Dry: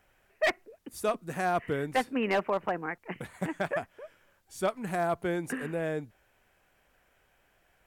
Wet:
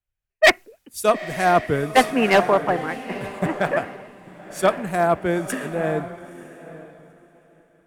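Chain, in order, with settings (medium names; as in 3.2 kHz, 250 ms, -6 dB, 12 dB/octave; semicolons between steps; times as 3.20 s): echo that smears into a reverb 924 ms, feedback 43%, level -7.5 dB; three bands expanded up and down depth 100%; trim +9 dB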